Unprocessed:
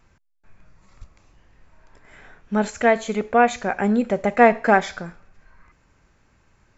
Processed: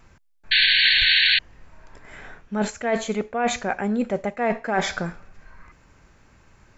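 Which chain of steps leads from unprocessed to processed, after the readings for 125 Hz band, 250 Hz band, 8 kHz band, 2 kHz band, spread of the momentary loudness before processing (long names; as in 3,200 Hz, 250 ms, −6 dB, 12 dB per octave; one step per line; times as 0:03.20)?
−1.5 dB, −4.0 dB, can't be measured, +4.0 dB, 12 LU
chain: reversed playback
downward compressor 20 to 1, threshold −25 dBFS, peak gain reduction 18 dB
reversed playback
sound drawn into the spectrogram noise, 0:00.51–0:01.39, 1,500–4,500 Hz −23 dBFS
level +5.5 dB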